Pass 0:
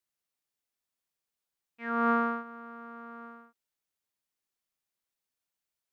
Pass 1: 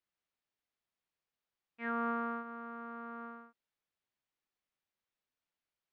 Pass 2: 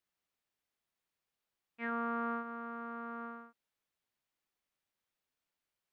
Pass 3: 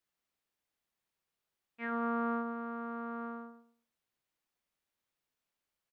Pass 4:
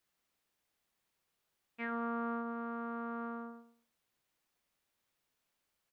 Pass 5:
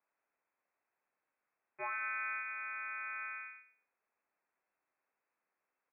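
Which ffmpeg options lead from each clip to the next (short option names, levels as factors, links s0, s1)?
-af "lowpass=3600,acompressor=threshold=0.0224:ratio=4"
-af "alimiter=level_in=1.78:limit=0.0631:level=0:latency=1,volume=0.562,volume=1.26"
-filter_complex "[0:a]asplit=2[s0][s1];[s1]adelay=107,lowpass=f=930:p=1,volume=0.562,asplit=2[s2][s3];[s3]adelay=107,lowpass=f=930:p=1,volume=0.31,asplit=2[s4][s5];[s5]adelay=107,lowpass=f=930:p=1,volume=0.31,asplit=2[s6][s7];[s7]adelay=107,lowpass=f=930:p=1,volume=0.31[s8];[s0][s2][s4][s6][s8]amix=inputs=5:normalize=0"
-af "acompressor=threshold=0.00501:ratio=2,volume=1.78"
-filter_complex "[0:a]lowpass=f=2300:t=q:w=0.5098,lowpass=f=2300:t=q:w=0.6013,lowpass=f=2300:t=q:w=0.9,lowpass=f=2300:t=q:w=2.563,afreqshift=-2700,acrossover=split=180 2000:gain=0.251 1 0.224[s0][s1][s2];[s0][s1][s2]amix=inputs=3:normalize=0,volume=1.33"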